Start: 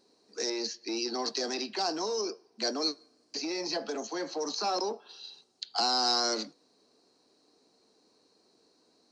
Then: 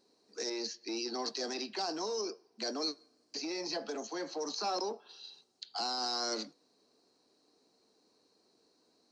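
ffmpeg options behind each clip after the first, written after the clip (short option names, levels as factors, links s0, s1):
-af "alimiter=limit=0.0891:level=0:latency=1:release=21,volume=0.631"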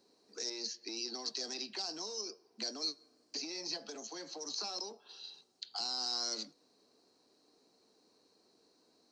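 -filter_complex "[0:a]acrossover=split=130|3000[s0][s1][s2];[s1]acompressor=threshold=0.00447:ratio=6[s3];[s0][s3][s2]amix=inputs=3:normalize=0,volume=1.12"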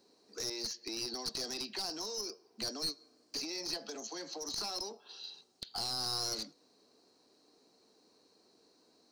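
-af "aeval=exprs='clip(val(0),-1,0.0126)':c=same,volume=1.33"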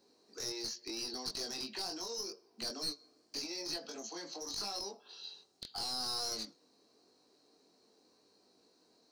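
-af "flanger=delay=20:depth=3.2:speed=0.83,volume=1.19"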